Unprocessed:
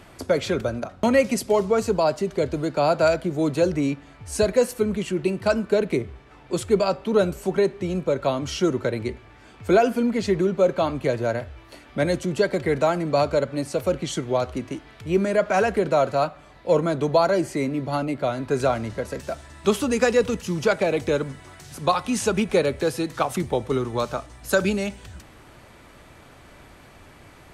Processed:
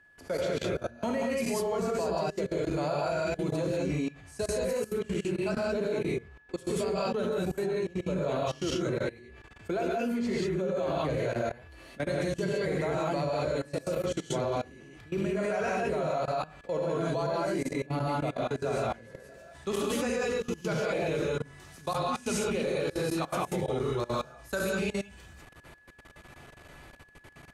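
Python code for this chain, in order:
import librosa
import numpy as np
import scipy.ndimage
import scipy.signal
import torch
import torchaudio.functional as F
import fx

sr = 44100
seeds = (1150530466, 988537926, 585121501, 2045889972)

y = fx.rev_gated(x, sr, seeds[0], gate_ms=220, shape='rising', drr_db=-6.0)
y = fx.level_steps(y, sr, step_db=21)
y = y + 10.0 ** (-49.0 / 20.0) * np.sin(2.0 * np.pi * 1700.0 * np.arange(len(y)) / sr)
y = y * librosa.db_to_amplitude(-8.5)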